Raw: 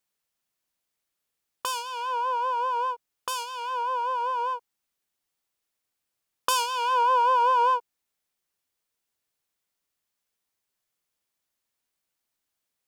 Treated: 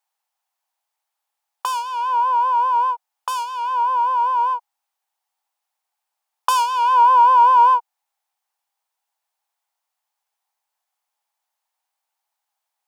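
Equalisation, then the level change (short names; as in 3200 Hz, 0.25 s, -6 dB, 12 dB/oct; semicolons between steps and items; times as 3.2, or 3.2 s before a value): resonant high-pass 820 Hz, resonance Q 5.7; 0.0 dB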